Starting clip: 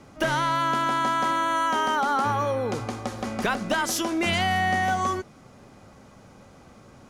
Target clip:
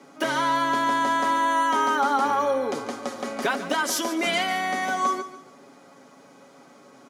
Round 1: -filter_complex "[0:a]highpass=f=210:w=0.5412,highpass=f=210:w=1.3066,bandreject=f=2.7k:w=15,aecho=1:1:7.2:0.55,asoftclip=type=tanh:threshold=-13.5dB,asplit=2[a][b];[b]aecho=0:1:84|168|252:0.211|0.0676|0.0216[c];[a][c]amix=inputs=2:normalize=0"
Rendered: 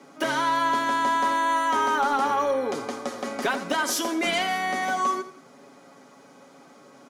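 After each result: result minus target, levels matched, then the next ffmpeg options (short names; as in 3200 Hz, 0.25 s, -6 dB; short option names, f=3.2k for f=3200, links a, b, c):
soft clip: distortion +14 dB; echo 60 ms early
-filter_complex "[0:a]highpass=f=210:w=0.5412,highpass=f=210:w=1.3066,bandreject=f=2.7k:w=15,aecho=1:1:7.2:0.55,asoftclip=type=tanh:threshold=-5.5dB,asplit=2[a][b];[b]aecho=0:1:84|168|252:0.211|0.0676|0.0216[c];[a][c]amix=inputs=2:normalize=0"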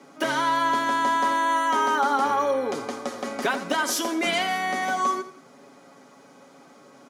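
echo 60 ms early
-filter_complex "[0:a]highpass=f=210:w=0.5412,highpass=f=210:w=1.3066,bandreject=f=2.7k:w=15,aecho=1:1:7.2:0.55,asoftclip=type=tanh:threshold=-5.5dB,asplit=2[a][b];[b]aecho=0:1:144|288|432:0.211|0.0676|0.0216[c];[a][c]amix=inputs=2:normalize=0"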